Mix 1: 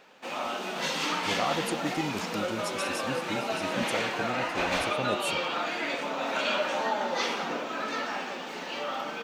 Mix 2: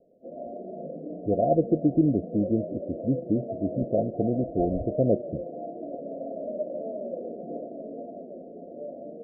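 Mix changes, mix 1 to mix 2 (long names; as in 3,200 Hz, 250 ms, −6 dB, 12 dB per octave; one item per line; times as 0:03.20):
speech +11.5 dB
master: add Chebyshev low-pass filter 700 Hz, order 10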